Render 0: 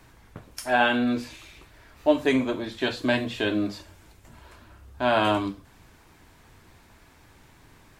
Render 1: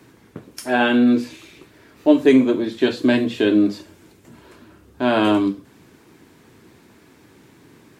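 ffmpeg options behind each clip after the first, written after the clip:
ffmpeg -i in.wav -af "highpass=170,lowshelf=frequency=520:width_type=q:width=1.5:gain=7,volume=2.5dB" out.wav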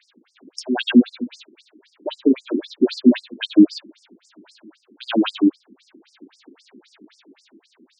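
ffmpeg -i in.wav -af "dynaudnorm=framelen=110:gausssize=13:maxgain=6dB,equalizer=frequency=125:width_type=o:width=1:gain=7,equalizer=frequency=500:width_type=o:width=1:gain=-11,equalizer=frequency=1000:width_type=o:width=1:gain=-8,equalizer=frequency=2000:width_type=o:width=1:gain=-6,equalizer=frequency=4000:width_type=o:width=1:gain=5,equalizer=frequency=8000:width_type=o:width=1:gain=-12,afftfilt=real='re*between(b*sr/1024,270*pow(6900/270,0.5+0.5*sin(2*PI*3.8*pts/sr))/1.41,270*pow(6900/270,0.5+0.5*sin(2*PI*3.8*pts/sr))*1.41)':imag='im*between(b*sr/1024,270*pow(6900/270,0.5+0.5*sin(2*PI*3.8*pts/sr))/1.41,270*pow(6900/270,0.5+0.5*sin(2*PI*3.8*pts/sr))*1.41)':win_size=1024:overlap=0.75,volume=7.5dB" out.wav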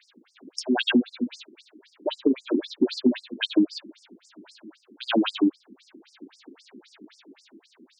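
ffmpeg -i in.wav -af "acompressor=threshold=-17dB:ratio=6" out.wav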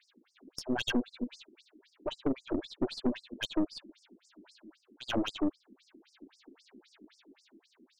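ffmpeg -i in.wav -af "aeval=exprs='(tanh(7.94*val(0)+0.65)-tanh(0.65))/7.94':channel_layout=same,volume=-5dB" out.wav

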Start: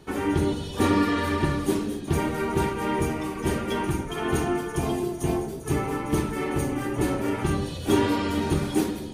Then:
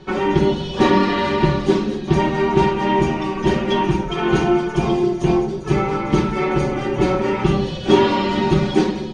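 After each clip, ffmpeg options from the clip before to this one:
ffmpeg -i in.wav -af "lowpass=frequency=5500:width=0.5412,lowpass=frequency=5500:width=1.3066,aecho=1:1:5.4:0.78,volume=6dB" out.wav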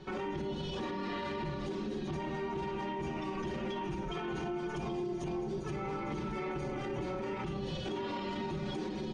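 ffmpeg -i in.wav -af "acompressor=threshold=-22dB:ratio=6,alimiter=limit=-21.5dB:level=0:latency=1:release=24,volume=-8dB" out.wav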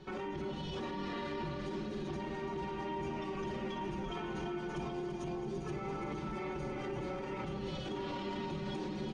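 ffmpeg -i in.wav -af "aecho=1:1:339|678|1017|1356|1695|2034:0.398|0.215|0.116|0.0627|0.0339|0.0183,volume=-3dB" out.wav

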